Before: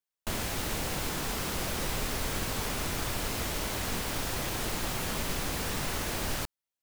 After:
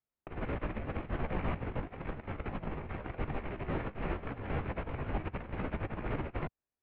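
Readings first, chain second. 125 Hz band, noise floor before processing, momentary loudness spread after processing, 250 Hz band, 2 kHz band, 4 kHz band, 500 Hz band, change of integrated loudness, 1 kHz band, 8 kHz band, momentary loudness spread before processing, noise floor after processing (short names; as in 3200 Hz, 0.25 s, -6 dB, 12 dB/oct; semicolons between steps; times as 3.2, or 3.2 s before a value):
-1.0 dB, under -85 dBFS, 5 LU, -2.0 dB, -8.5 dB, -22.0 dB, -2.5 dB, -6.5 dB, -5.0 dB, under -40 dB, 1 LU, under -85 dBFS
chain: rattling part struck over -33 dBFS, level -26 dBFS; tilt shelf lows +8 dB, about 1300 Hz; chorus voices 2, 0.91 Hz, delay 16 ms, depth 3.6 ms; negative-ratio compressor -32 dBFS, ratio -0.5; mistuned SSB -250 Hz 160–2900 Hz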